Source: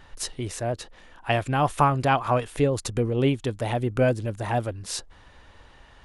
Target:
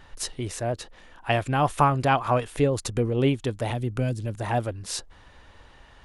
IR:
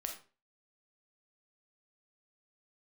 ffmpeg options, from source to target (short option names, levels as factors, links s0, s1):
-filter_complex "[0:a]asettb=1/sr,asplit=3[s0][s1][s2];[s0]atrim=end=3.704[s3];[s1]atrim=start=3.7:end=4.35,asetpts=PTS-STARTPTS,afade=t=in:d=0.004:c=qsin,afade=t=out:st=0.646:d=0.004:c=qsin,acrossover=split=250|3000[s4][s5][s6];[s5]acompressor=threshold=0.0251:ratio=6[s7];[s4][s7][s6]amix=inputs=3:normalize=0[s8];[s2]atrim=start=4.346[s9];[s3][s8]acrossfade=d=0.004:c1=hsin:c2=qsin[s10];[s10][s9]acrossfade=d=0.004:c1=qsin:c2=hsin"